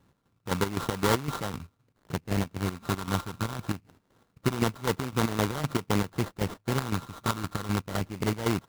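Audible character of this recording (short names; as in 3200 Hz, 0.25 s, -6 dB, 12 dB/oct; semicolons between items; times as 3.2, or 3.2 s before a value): a buzz of ramps at a fixed pitch in blocks of 32 samples; phasing stages 8, 0.24 Hz, lowest notch 660–4700 Hz; chopped level 3.9 Hz, depth 65%, duty 50%; aliases and images of a low sample rate 2500 Hz, jitter 20%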